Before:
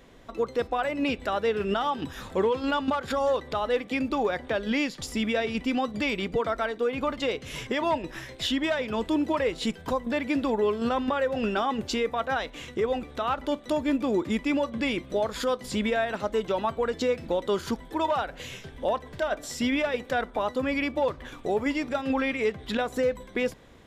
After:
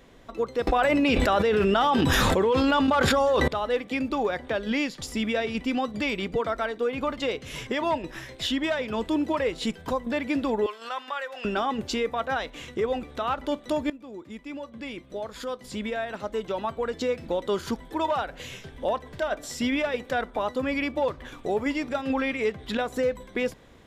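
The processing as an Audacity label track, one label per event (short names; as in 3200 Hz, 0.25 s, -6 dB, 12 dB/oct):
0.670000	3.480000	fast leveller amount 100%
10.660000	11.450000	HPF 1000 Hz
13.900000	17.640000	fade in, from -18.5 dB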